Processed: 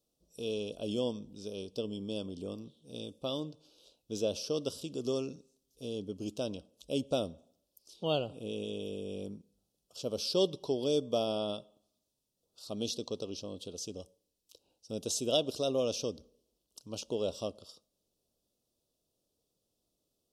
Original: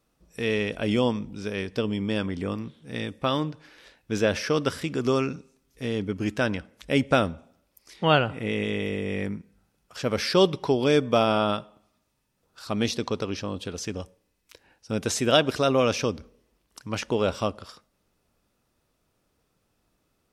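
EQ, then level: Butterworth band-stop 1.9 kHz, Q 0.9; bass shelf 300 Hz -10.5 dB; high-order bell 1.3 kHz -11 dB; -5.0 dB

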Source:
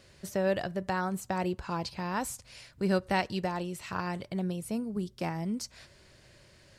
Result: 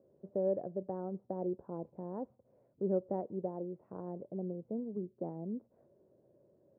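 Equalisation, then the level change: high-pass 220 Hz 12 dB/octave; four-pole ladder low-pass 640 Hz, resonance 35%; distance through air 460 m; +3.5 dB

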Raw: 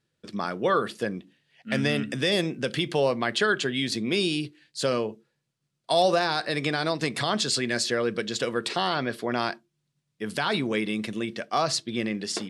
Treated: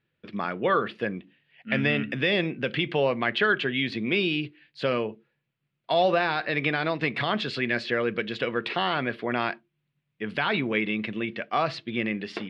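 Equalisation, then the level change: distance through air 370 m; peaking EQ 2.5 kHz +10 dB 1.2 oct; 0.0 dB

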